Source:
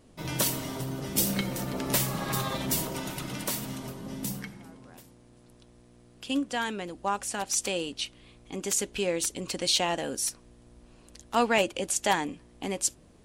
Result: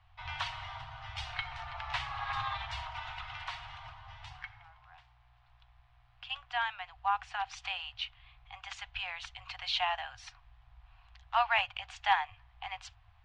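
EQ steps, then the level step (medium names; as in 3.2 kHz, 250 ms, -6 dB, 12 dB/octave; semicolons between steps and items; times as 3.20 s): Chebyshev band-stop 110–730 Hz, order 5; low-pass 3.3 kHz 24 dB/octave; 0.0 dB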